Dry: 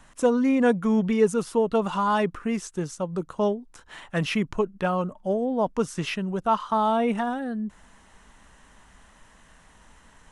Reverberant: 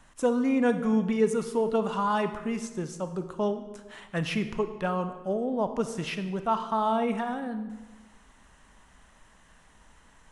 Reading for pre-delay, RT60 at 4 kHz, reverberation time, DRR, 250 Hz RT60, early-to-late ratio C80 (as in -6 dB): 29 ms, 0.95 s, 1.2 s, 9.0 dB, 1.4 s, 12.5 dB